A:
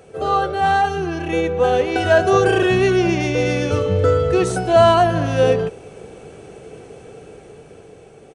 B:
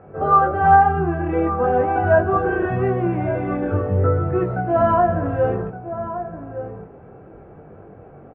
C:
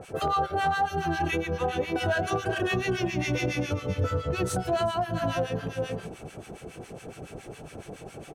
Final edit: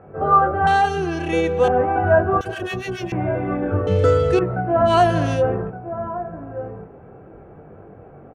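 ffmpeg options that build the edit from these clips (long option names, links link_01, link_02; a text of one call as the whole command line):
ffmpeg -i take0.wav -i take1.wav -i take2.wav -filter_complex "[0:a]asplit=3[link_01][link_02][link_03];[1:a]asplit=5[link_04][link_05][link_06][link_07][link_08];[link_04]atrim=end=0.672[link_09];[link_01]atrim=start=0.668:end=1.682[link_10];[link_05]atrim=start=1.678:end=2.412[link_11];[2:a]atrim=start=2.408:end=3.122[link_12];[link_06]atrim=start=3.118:end=3.872[link_13];[link_02]atrim=start=3.868:end=4.392[link_14];[link_07]atrim=start=4.388:end=4.95[link_15];[link_03]atrim=start=4.85:end=5.43[link_16];[link_08]atrim=start=5.33[link_17];[link_09][link_10]acrossfade=duration=0.004:curve1=hsin:curve2=hsin[link_18];[link_18][link_11]acrossfade=duration=0.004:curve1=hsin:curve2=hsin[link_19];[link_19][link_12]acrossfade=duration=0.004:curve1=hsin:curve2=hsin[link_20];[link_20][link_13]acrossfade=duration=0.004:curve1=hsin:curve2=hsin[link_21];[link_21][link_14]acrossfade=duration=0.004:curve1=hsin:curve2=hsin[link_22];[link_22][link_15]acrossfade=duration=0.004:curve1=hsin:curve2=hsin[link_23];[link_23][link_16]acrossfade=duration=0.1:curve1=tri:curve2=tri[link_24];[link_24][link_17]acrossfade=duration=0.1:curve1=tri:curve2=tri" out.wav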